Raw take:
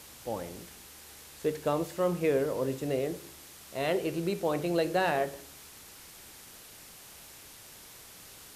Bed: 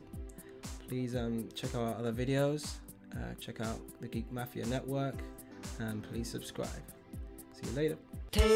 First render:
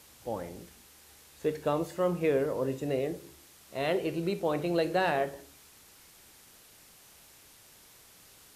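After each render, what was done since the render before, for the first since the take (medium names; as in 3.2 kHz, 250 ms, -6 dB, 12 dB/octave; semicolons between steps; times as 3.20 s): noise print and reduce 6 dB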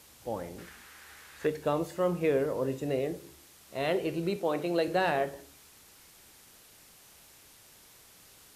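0.58–1.47 s: peaking EQ 1.6 kHz +14 dB 1.4 oct; 4.36–4.88 s: high-pass 190 Hz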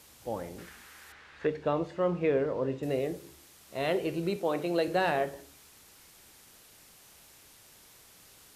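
1.12–2.83 s: low-pass 3.6 kHz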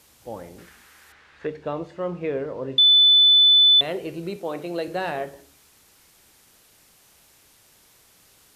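2.78–3.81 s: bleep 3.5 kHz -11 dBFS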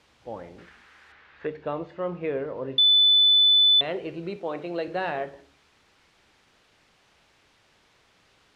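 low-pass 3.4 kHz 12 dB/octave; bass shelf 470 Hz -3.5 dB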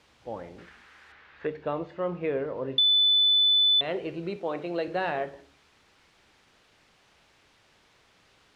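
compression 2.5:1, threshold -21 dBFS, peak gain reduction 3.5 dB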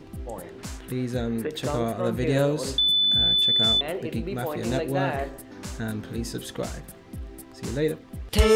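add bed +8 dB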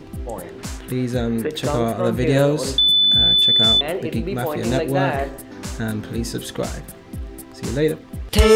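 trim +6 dB; peak limiter -3 dBFS, peak gain reduction 1.5 dB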